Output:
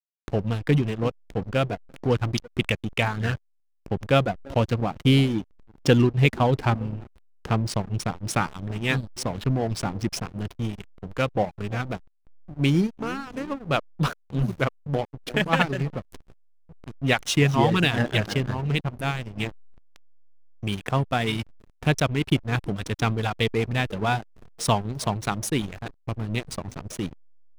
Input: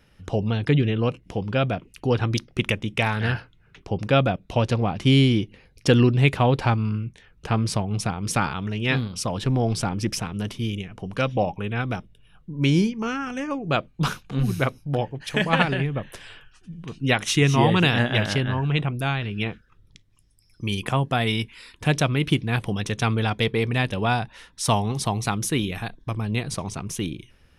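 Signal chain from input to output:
feedback echo with a band-pass in the loop 336 ms, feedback 59%, band-pass 370 Hz, level −12.5 dB
reverb reduction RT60 0.75 s
slack as between gear wheels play −27 dBFS

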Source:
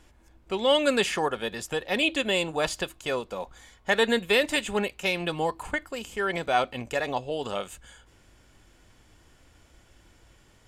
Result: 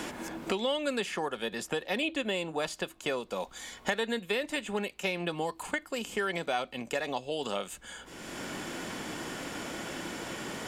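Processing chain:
low shelf with overshoot 140 Hz −6.5 dB, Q 1.5
multiband upward and downward compressor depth 100%
level −6 dB

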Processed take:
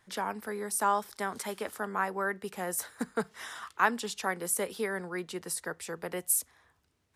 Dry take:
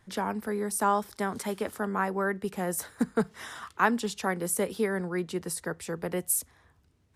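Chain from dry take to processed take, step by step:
low-shelf EQ 360 Hz −11.5 dB

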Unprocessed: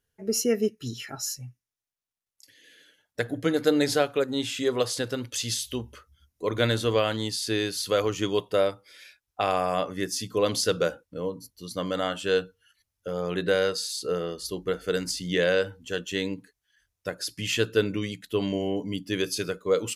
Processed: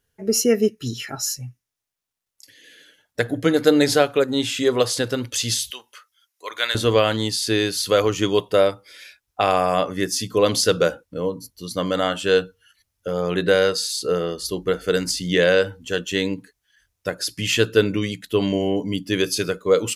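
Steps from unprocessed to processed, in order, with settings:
0:05.70–0:06.75: high-pass filter 1,200 Hz 12 dB per octave
level +6.5 dB

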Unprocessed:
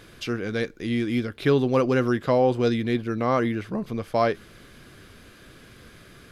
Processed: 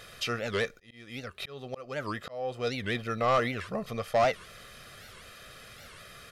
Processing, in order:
low-shelf EQ 420 Hz −11 dB
comb filter 1.6 ms, depth 67%
0:00.73–0:03.04: volume swells 739 ms
soft clipping −20.5 dBFS, distortion −11 dB
wow of a warped record 78 rpm, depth 250 cents
level +2 dB

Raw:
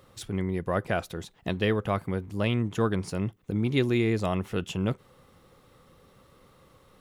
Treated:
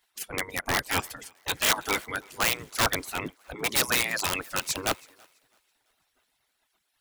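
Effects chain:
high-pass filter 57 Hz 6 dB per octave
reverb reduction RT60 0.97 s
gate on every frequency bin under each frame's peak −15 dB weak
parametric band 110 Hz +4.5 dB 0.77 octaves
harmonic and percussive parts rebalanced percussive +9 dB
high-shelf EQ 5,900 Hz +3.5 dB
in parallel at −1.5 dB: brickwall limiter −19 dBFS, peak gain reduction 11 dB
0:00.79–0:02.15: on the sum: notch comb filter 180 Hz
wrap-around overflow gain 19.5 dB
on a send: feedback echo with a high-pass in the loop 330 ms, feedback 63%, high-pass 260 Hz, level −22 dB
on the sum: multiband upward and downward expander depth 70%
level +2.5 dB

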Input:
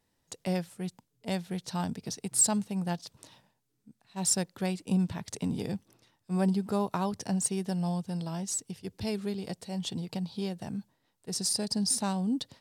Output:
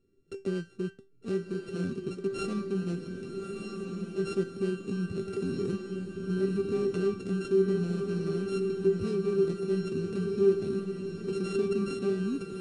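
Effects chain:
samples sorted by size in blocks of 32 samples
de-essing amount 40%
elliptic low-pass filter 9,500 Hz, stop band 40 dB
low shelf with overshoot 570 Hz +13.5 dB, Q 3
in parallel at +0.5 dB: downward compressor, threshold −27 dBFS, peak gain reduction 16 dB
on the sum: brickwall limiter −11 dBFS, peak gain reduction 7 dB
tuned comb filter 390 Hz, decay 0.25 s, harmonics all, mix 90%
on a send: feedback delay with all-pass diffusion 1,229 ms, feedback 52%, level −4.5 dB
on the sum: level +1.5 dB

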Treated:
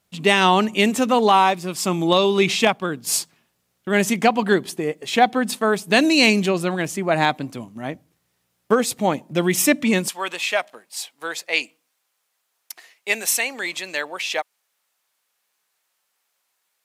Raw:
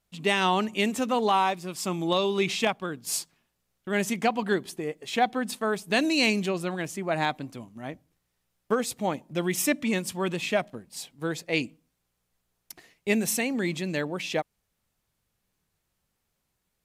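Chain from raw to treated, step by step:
high-pass filter 95 Hz 12 dB per octave, from 0:10.08 780 Hz
level +8 dB

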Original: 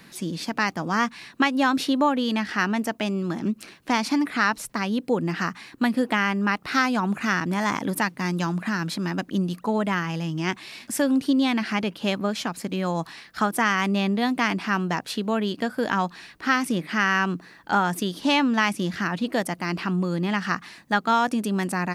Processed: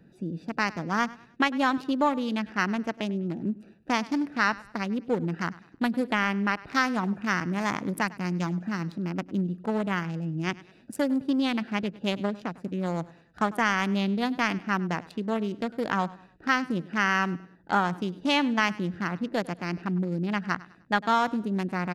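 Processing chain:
adaptive Wiener filter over 41 samples
parametric band 260 Hz −2.5 dB 0.77 octaves
repeating echo 101 ms, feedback 35%, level −20 dB
level −1.5 dB

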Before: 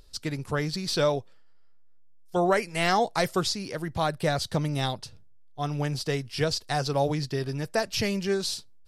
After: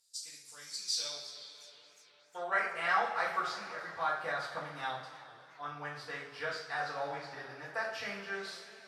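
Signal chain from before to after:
high-shelf EQ 11,000 Hz +8.5 dB
mains-hum notches 60/120/180/240/300 Hz
coupled-rooms reverb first 0.51 s, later 3.1 s, from −16 dB, DRR −8.5 dB
band-pass filter sweep 7,300 Hz → 1,400 Hz, 0:00.73–0:02.76
feedback echo with a swinging delay time 360 ms, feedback 60%, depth 186 cents, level −20.5 dB
level −7.5 dB

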